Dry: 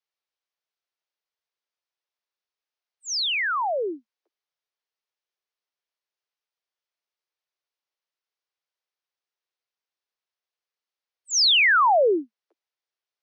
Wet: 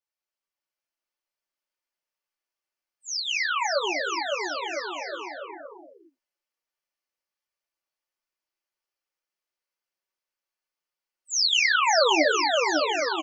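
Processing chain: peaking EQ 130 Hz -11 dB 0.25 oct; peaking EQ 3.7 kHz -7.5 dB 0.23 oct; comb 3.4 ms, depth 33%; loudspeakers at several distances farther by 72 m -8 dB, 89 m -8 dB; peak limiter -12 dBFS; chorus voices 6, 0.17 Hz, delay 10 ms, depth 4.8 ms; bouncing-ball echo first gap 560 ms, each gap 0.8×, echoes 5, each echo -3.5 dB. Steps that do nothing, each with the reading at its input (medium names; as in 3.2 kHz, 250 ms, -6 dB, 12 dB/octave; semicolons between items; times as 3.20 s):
peaking EQ 130 Hz: input has nothing below 250 Hz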